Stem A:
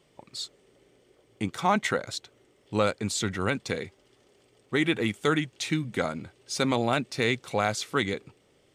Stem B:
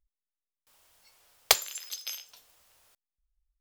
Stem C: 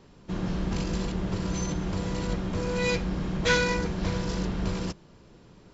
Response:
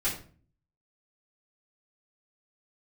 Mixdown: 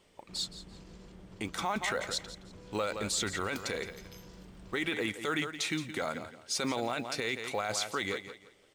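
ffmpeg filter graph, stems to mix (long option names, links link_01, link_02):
-filter_complex "[0:a]equalizer=frequency=140:width_type=o:width=2.3:gain=-10.5,acrusher=bits=8:mode=log:mix=0:aa=0.000001,volume=0.5dB,asplit=3[link_01][link_02][link_03];[link_02]volume=-14dB[link_04];[1:a]adelay=2050,volume=-18.5dB[link_05];[2:a]acompressor=threshold=-33dB:ratio=2.5,volume=-17dB[link_06];[link_03]apad=whole_len=249579[link_07];[link_05][link_07]sidechaincompress=threshold=-36dB:ratio=4:attack=7.6:release=144[link_08];[link_04]aecho=0:1:169|338|507|676:1|0.27|0.0729|0.0197[link_09];[link_01][link_08][link_06][link_09]amix=inputs=4:normalize=0,alimiter=limit=-22dB:level=0:latency=1:release=17"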